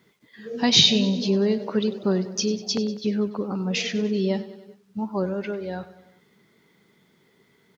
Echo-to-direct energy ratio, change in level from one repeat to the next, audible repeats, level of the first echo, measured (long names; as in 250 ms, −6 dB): −14.0 dB, −4.5 dB, 4, −16.0 dB